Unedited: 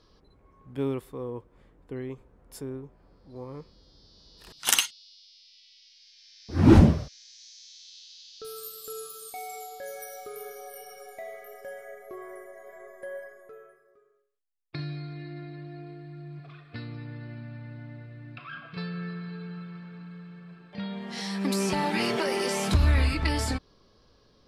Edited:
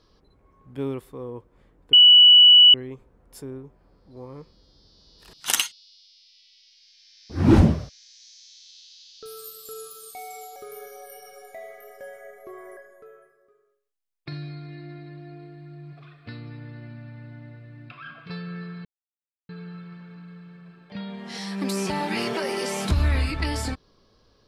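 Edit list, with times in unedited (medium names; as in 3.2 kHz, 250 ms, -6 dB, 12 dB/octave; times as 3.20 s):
1.93 s: add tone 2.95 kHz -8 dBFS 0.81 s
9.75–10.20 s: delete
12.41–13.24 s: delete
19.32 s: insert silence 0.64 s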